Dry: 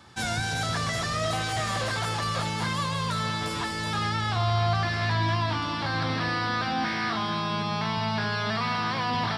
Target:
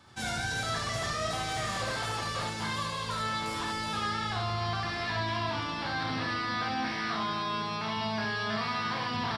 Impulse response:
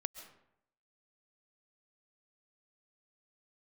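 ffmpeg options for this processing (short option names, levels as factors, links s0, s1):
-af "aecho=1:1:32|70:0.501|0.708,volume=0.501"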